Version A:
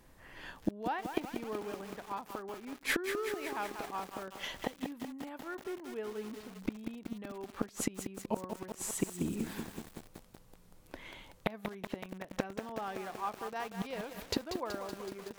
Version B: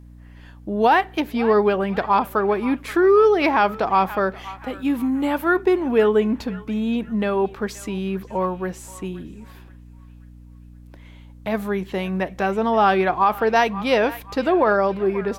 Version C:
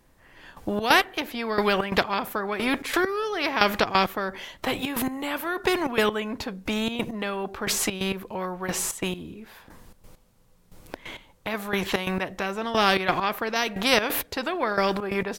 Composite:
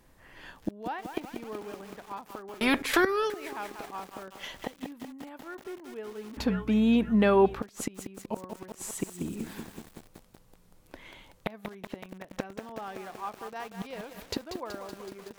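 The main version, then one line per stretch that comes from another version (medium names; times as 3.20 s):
A
2.61–3.30 s: from C
6.37–7.62 s: from B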